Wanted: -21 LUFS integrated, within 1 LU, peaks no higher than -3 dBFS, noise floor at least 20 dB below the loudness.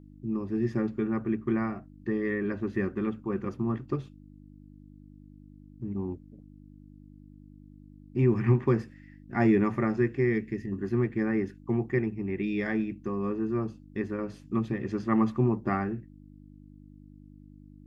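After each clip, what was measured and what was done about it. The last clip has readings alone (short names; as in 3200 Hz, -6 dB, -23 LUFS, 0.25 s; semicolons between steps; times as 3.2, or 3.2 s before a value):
hum 50 Hz; harmonics up to 300 Hz; hum level -49 dBFS; loudness -29.5 LUFS; peak -12.0 dBFS; loudness target -21.0 LUFS
-> de-hum 50 Hz, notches 6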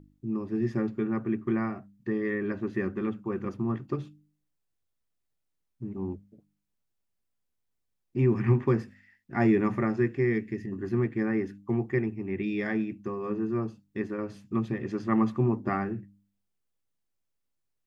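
hum none; loudness -30.0 LUFS; peak -12.5 dBFS; loudness target -21.0 LUFS
-> gain +9 dB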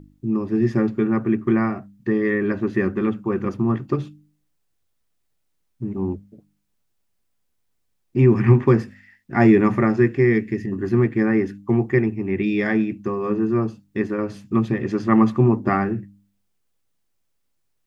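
loudness -21.0 LUFS; peak -3.5 dBFS; noise floor -70 dBFS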